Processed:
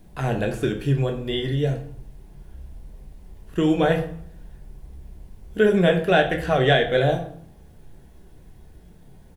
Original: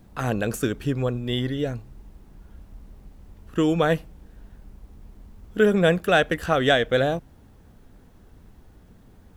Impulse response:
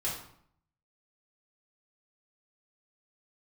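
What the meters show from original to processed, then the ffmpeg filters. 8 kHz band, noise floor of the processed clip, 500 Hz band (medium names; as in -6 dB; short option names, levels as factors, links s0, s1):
no reading, -49 dBFS, +1.5 dB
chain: -filter_complex "[0:a]acrossover=split=4300[s0][s1];[s1]acompressor=threshold=0.00316:ratio=4:attack=1:release=60[s2];[s0][s2]amix=inputs=2:normalize=0,equalizer=f=250:t=o:w=0.33:g=-5,equalizer=f=1250:t=o:w=0.33:g=-9,equalizer=f=10000:t=o:w=0.33:g=5,flanger=delay=2.7:depth=5.9:regen=-62:speed=1.6:shape=triangular,asplit=2[s3][s4];[s4]adelay=29,volume=0.282[s5];[s3][s5]amix=inputs=2:normalize=0,asplit=2[s6][s7];[1:a]atrim=start_sample=2205[s8];[s7][s8]afir=irnorm=-1:irlink=0,volume=0.447[s9];[s6][s9]amix=inputs=2:normalize=0,volume=1.33"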